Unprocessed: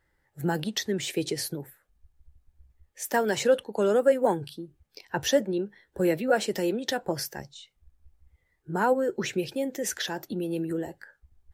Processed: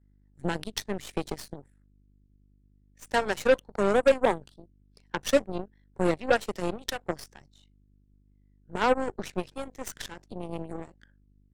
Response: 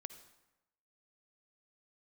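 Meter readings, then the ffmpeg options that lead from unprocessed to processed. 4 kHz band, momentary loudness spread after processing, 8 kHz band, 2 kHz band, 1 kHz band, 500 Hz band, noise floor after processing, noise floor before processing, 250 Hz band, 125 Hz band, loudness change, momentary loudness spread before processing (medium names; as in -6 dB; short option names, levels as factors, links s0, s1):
-4.0 dB, 16 LU, -7.0 dB, +0.5 dB, +0.5 dB, -1.5 dB, -62 dBFS, -73 dBFS, -3.5 dB, -3.0 dB, -1.5 dB, 14 LU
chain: -af "aeval=exprs='val(0)+0.00708*(sin(2*PI*50*n/s)+sin(2*PI*2*50*n/s)/2+sin(2*PI*3*50*n/s)/3+sin(2*PI*4*50*n/s)/4+sin(2*PI*5*50*n/s)/5)':c=same,aresample=22050,aresample=44100,aeval=exprs='0.316*(cos(1*acos(clip(val(0)/0.316,-1,1)))-cos(1*PI/2))+0.0398*(cos(7*acos(clip(val(0)/0.316,-1,1)))-cos(7*PI/2))+0.0178*(cos(8*acos(clip(val(0)/0.316,-1,1)))-cos(8*PI/2))':c=same"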